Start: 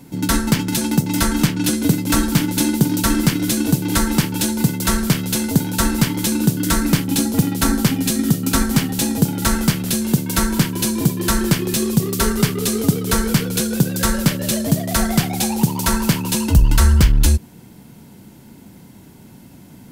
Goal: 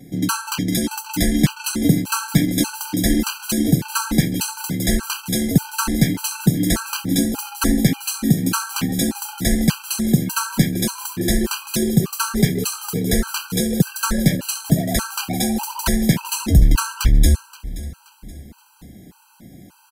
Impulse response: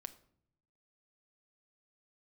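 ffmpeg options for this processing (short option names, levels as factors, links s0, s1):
-filter_complex "[0:a]aecho=1:1:526|1052|1578:0.141|0.0537|0.0204,asplit=2[s0][s1];[1:a]atrim=start_sample=2205[s2];[s1][s2]afir=irnorm=-1:irlink=0,volume=1.12[s3];[s0][s3]amix=inputs=2:normalize=0,afftfilt=real='re*gt(sin(2*PI*1.7*pts/sr)*(1-2*mod(floor(b*sr/1024/800),2)),0)':imag='im*gt(sin(2*PI*1.7*pts/sr)*(1-2*mod(floor(b*sr/1024/800),2)),0)':win_size=1024:overlap=0.75,volume=0.668"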